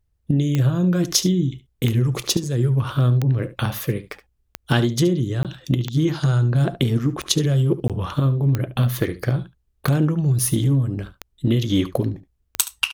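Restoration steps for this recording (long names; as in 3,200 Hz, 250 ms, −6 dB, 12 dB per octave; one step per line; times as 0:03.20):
click removal
repair the gap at 0:05.43/0:07.88, 17 ms
echo removal 72 ms −15.5 dB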